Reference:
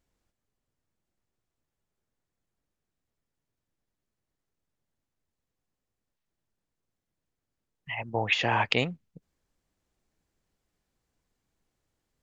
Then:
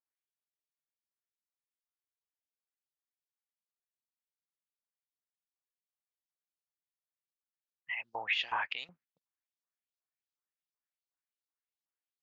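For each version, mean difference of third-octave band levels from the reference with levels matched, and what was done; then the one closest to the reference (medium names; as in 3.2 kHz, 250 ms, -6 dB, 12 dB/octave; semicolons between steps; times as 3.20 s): 8.5 dB: gate -47 dBFS, range -12 dB; peak limiter -17.5 dBFS, peak gain reduction 10.5 dB; LFO band-pass saw up 2.7 Hz 970–5400 Hz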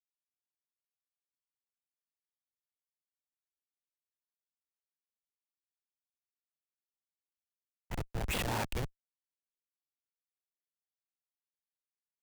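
13.0 dB: gain riding 2 s; Schmitt trigger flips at -26.5 dBFS; three bands expanded up and down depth 100%; trim +4.5 dB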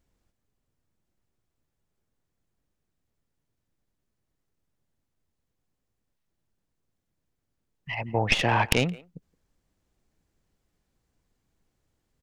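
4.5 dB: tracing distortion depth 0.11 ms; bass shelf 340 Hz +5 dB; speakerphone echo 170 ms, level -21 dB; trim +1.5 dB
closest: third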